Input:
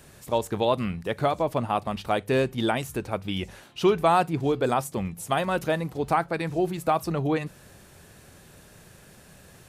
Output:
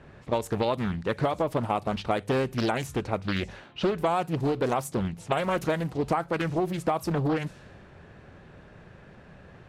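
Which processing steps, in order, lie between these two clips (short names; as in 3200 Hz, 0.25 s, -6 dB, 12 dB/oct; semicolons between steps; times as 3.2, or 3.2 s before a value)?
low-pass opened by the level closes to 1900 Hz, open at -22.5 dBFS; compressor 5:1, threshold -25 dBFS, peak gain reduction 9 dB; Doppler distortion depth 0.64 ms; gain +2.5 dB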